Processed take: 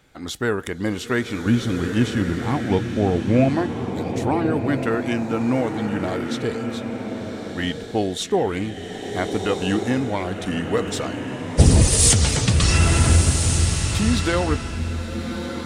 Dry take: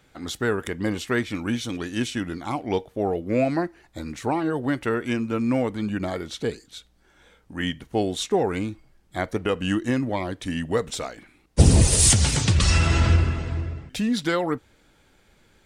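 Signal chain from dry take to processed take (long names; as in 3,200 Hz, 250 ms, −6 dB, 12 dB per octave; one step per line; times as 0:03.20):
0:01.46–0:03.49: bass and treble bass +10 dB, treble −5 dB
slow-attack reverb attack 1,450 ms, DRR 4.5 dB
level +1.5 dB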